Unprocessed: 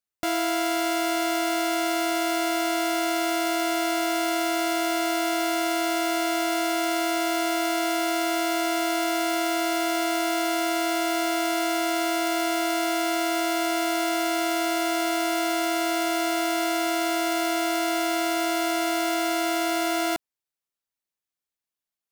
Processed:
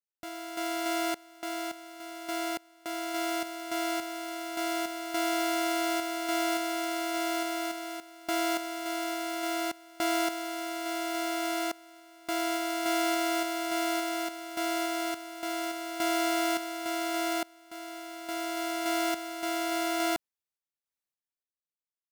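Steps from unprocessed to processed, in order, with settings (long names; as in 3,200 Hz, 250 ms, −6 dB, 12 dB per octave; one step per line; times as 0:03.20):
sample-and-hold tremolo 3.5 Hz, depth 100%
level −2.5 dB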